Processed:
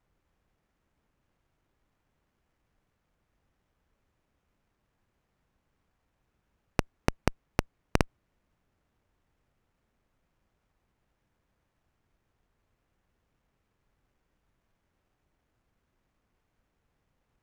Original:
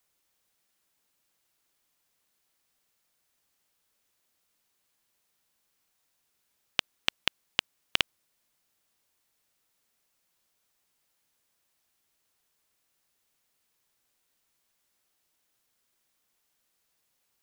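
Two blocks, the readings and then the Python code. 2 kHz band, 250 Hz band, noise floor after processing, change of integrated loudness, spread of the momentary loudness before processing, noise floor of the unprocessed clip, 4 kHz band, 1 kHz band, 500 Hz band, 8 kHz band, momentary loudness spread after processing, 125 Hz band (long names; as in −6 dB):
−4.5 dB, +16.0 dB, −79 dBFS, −1.5 dB, 3 LU, −76 dBFS, −14.0 dB, +5.5 dB, +12.0 dB, +0.5 dB, 3 LU, +18.5 dB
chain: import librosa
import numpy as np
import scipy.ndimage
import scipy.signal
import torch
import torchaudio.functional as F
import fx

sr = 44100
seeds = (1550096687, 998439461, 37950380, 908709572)

y = 10.0 ** (-8.0 / 20.0) * np.tanh(x / 10.0 ** (-8.0 / 20.0))
y = fx.riaa(y, sr, side='playback')
y = fx.running_max(y, sr, window=9)
y = y * 10.0 ** (4.5 / 20.0)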